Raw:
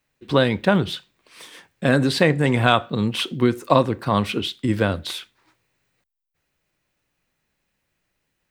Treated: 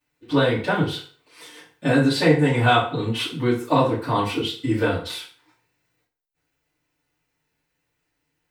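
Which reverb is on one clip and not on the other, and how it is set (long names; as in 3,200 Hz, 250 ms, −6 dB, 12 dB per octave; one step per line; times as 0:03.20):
feedback delay network reverb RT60 0.46 s, low-frequency decay 0.8×, high-frequency decay 0.8×, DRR −10 dB
level −11 dB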